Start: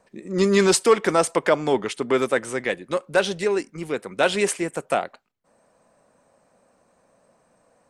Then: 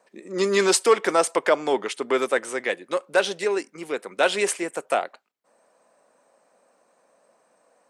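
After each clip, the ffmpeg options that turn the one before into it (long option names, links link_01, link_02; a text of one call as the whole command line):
ffmpeg -i in.wav -af "highpass=340" out.wav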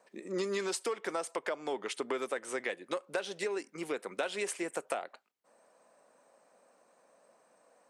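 ffmpeg -i in.wav -af "acompressor=threshold=-28dB:ratio=12,volume=-3dB" out.wav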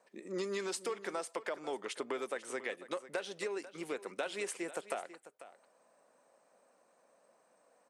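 ffmpeg -i in.wav -af "aecho=1:1:494:0.178,volume=-3.5dB" out.wav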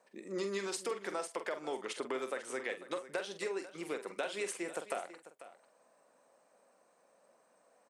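ffmpeg -i in.wav -filter_complex "[0:a]asplit=2[link_01][link_02];[link_02]adelay=46,volume=-9dB[link_03];[link_01][link_03]amix=inputs=2:normalize=0" out.wav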